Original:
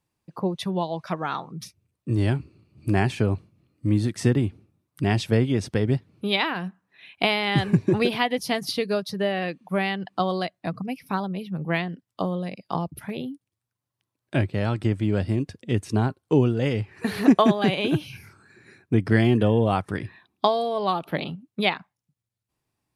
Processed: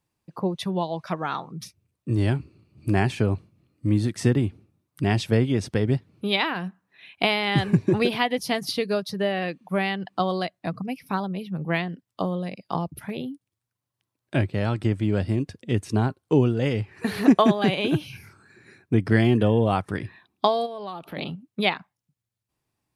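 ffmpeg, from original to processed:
-filter_complex "[0:a]asplit=3[s0][s1][s2];[s0]afade=t=out:st=20.65:d=0.02[s3];[s1]acompressor=threshold=0.02:ratio=3:attack=3.2:release=140:knee=1:detection=peak,afade=t=in:st=20.65:d=0.02,afade=t=out:st=21.16:d=0.02[s4];[s2]afade=t=in:st=21.16:d=0.02[s5];[s3][s4][s5]amix=inputs=3:normalize=0"

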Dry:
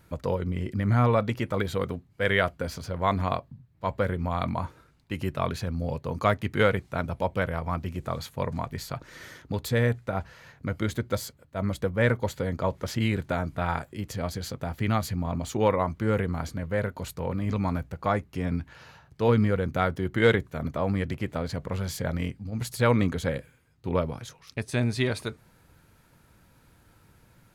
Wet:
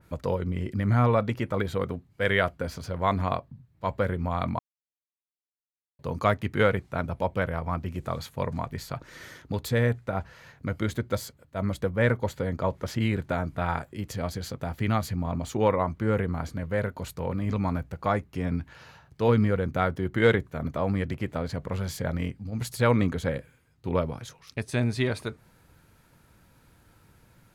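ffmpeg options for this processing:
-filter_complex "[0:a]asplit=3[s0][s1][s2];[s0]atrim=end=4.59,asetpts=PTS-STARTPTS,afade=t=out:st=4.586:d=0.004:c=hsin[s3];[s1]atrim=start=4.59:end=5.99,asetpts=PTS-STARTPTS,volume=0[s4];[s2]atrim=start=5.99,asetpts=PTS-STARTPTS,afade=t=in:d=0.004:c=hsin[s5];[s3][s4][s5]concat=n=3:v=0:a=1,adynamicequalizer=threshold=0.00631:dfrequency=2500:dqfactor=0.7:tfrequency=2500:tqfactor=0.7:attack=5:release=100:ratio=0.375:range=2.5:mode=cutabove:tftype=highshelf"

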